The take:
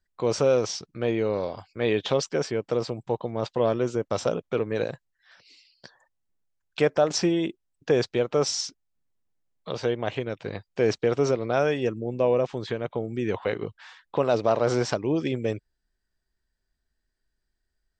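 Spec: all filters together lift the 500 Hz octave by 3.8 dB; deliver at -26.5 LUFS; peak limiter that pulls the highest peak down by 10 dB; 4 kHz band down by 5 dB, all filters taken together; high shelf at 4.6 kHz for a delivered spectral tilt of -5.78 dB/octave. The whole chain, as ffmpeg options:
-af "equalizer=f=500:t=o:g=4.5,equalizer=f=4000:t=o:g=-4.5,highshelf=f=4600:g=-4,volume=1.19,alimiter=limit=0.168:level=0:latency=1"

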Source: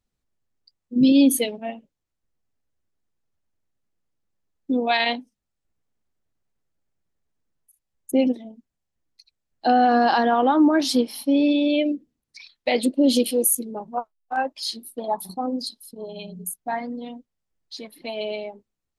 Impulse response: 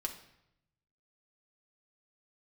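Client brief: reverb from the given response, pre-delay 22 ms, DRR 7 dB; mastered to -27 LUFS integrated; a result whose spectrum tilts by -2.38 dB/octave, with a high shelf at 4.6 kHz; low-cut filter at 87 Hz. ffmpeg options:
-filter_complex "[0:a]highpass=87,highshelf=f=4600:g=8.5,asplit=2[s0][s1];[1:a]atrim=start_sample=2205,adelay=22[s2];[s1][s2]afir=irnorm=-1:irlink=0,volume=0.422[s3];[s0][s3]amix=inputs=2:normalize=0,volume=0.447"

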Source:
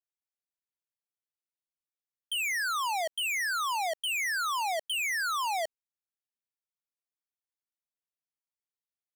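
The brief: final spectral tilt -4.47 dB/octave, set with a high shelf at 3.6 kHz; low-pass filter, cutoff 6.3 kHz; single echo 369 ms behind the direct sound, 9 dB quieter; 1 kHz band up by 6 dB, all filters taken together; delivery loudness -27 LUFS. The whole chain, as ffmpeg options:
-af "lowpass=6300,equalizer=f=1000:t=o:g=7,highshelf=f=3600:g=6,aecho=1:1:369:0.355,volume=0.841"

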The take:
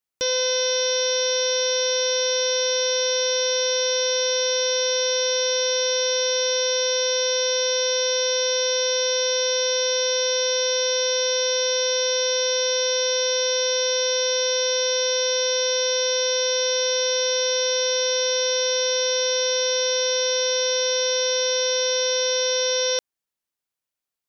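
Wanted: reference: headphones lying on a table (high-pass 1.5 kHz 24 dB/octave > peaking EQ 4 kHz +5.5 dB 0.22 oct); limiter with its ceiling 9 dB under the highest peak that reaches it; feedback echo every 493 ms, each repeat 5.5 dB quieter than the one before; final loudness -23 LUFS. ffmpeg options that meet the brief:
-af "alimiter=limit=0.0708:level=0:latency=1,highpass=f=1500:w=0.5412,highpass=f=1500:w=1.3066,equalizer=f=4000:t=o:w=0.22:g=5.5,aecho=1:1:493|986|1479|1972|2465|2958|3451:0.531|0.281|0.149|0.079|0.0419|0.0222|0.0118,volume=1.68"

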